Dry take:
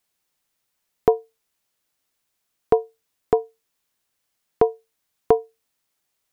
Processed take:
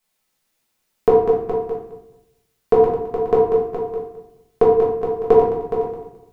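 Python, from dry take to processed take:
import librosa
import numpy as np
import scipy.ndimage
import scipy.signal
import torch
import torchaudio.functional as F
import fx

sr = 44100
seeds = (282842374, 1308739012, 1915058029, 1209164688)

p1 = fx.reverse_delay_fb(x, sr, ms=107, feedback_pct=43, wet_db=-6.5)
p2 = p1 + fx.echo_single(p1, sr, ms=418, db=-8.5, dry=0)
p3 = fx.room_shoebox(p2, sr, seeds[0], volume_m3=140.0, walls='mixed', distance_m=1.5)
y = F.gain(torch.from_numpy(p3), -1.5).numpy()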